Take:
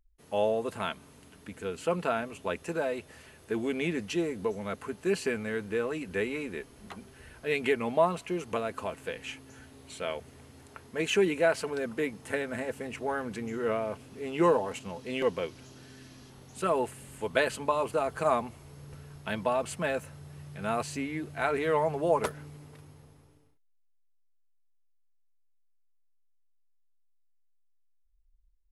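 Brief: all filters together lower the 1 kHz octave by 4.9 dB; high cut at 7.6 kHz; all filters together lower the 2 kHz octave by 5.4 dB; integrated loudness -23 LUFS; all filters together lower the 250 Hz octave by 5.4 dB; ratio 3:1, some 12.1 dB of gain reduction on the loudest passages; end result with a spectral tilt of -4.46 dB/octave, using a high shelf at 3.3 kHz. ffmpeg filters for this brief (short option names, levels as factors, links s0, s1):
-af "lowpass=7600,equalizer=f=250:t=o:g=-7.5,equalizer=f=1000:t=o:g=-4.5,equalizer=f=2000:t=o:g=-3.5,highshelf=f=3300:g=-6,acompressor=threshold=0.01:ratio=3,volume=10.6"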